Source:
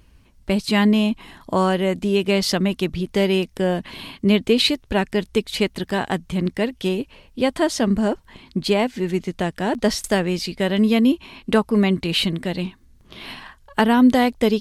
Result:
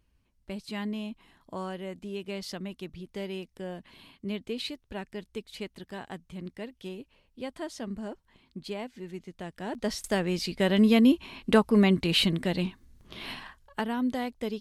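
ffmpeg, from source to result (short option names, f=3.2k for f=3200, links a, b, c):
-af "volume=-3.5dB,afade=t=in:st=9.38:d=0.53:silence=0.473151,afade=t=in:st=9.91:d=0.81:silence=0.421697,afade=t=out:st=13.33:d=0.51:silence=0.266073"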